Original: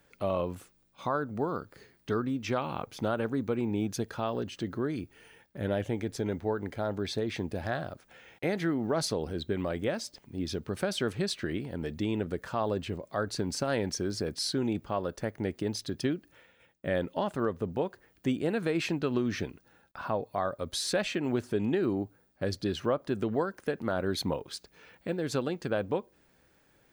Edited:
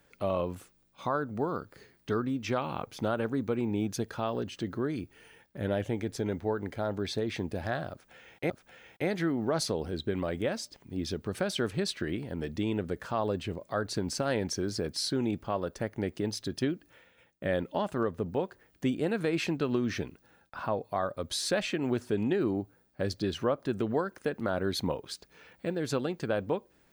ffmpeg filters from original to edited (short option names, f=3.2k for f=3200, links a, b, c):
-filter_complex "[0:a]asplit=2[a][b];[a]atrim=end=8.502[c];[b]atrim=start=7.918[d];[c][d]acrossfade=d=0.004:c1=hsin:c2=hsin"